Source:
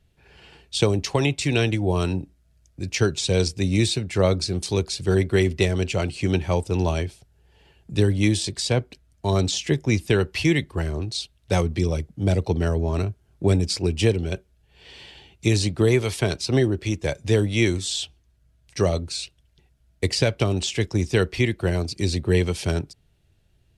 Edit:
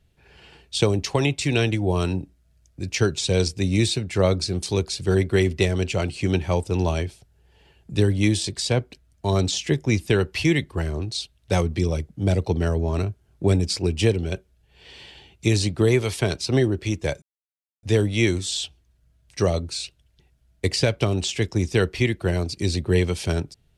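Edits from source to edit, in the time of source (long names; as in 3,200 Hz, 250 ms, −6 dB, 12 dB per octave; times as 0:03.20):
0:17.22: splice in silence 0.61 s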